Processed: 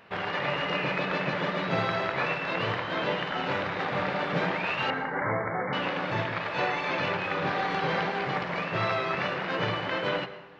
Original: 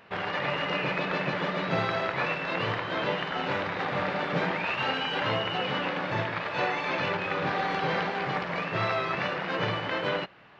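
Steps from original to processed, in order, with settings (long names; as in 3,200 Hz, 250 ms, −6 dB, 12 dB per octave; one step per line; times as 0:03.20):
0:04.90–0:05.73: linear-phase brick-wall low-pass 2,300 Hz
dense smooth reverb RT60 0.94 s, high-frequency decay 0.6×, pre-delay 90 ms, DRR 12.5 dB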